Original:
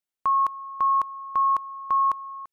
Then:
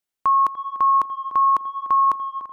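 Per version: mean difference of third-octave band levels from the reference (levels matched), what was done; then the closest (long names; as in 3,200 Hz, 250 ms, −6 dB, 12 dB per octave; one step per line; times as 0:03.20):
1.0 dB: dynamic equaliser 300 Hz, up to +7 dB, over −47 dBFS, Q 1.3
tape delay 295 ms, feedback 56%, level −11 dB, low-pass 1,100 Hz
level +4 dB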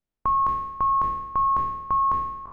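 6.5 dB: peak hold with a decay on every bin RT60 1.01 s
spectral tilt −4.5 dB per octave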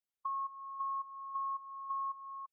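2.0 dB: expanding power law on the bin magnitudes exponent 1.7
downward compressor 3 to 1, threshold −32 dBFS, peak gain reduction 9 dB
level −7 dB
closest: first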